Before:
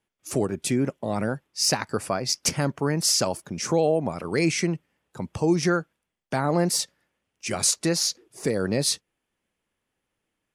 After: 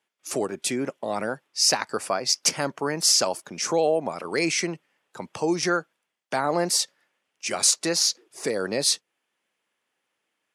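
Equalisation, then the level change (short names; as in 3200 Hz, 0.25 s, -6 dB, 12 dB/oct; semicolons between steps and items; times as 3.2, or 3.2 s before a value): weighting filter A; dynamic EQ 2000 Hz, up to -3 dB, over -41 dBFS, Q 0.71; +3.5 dB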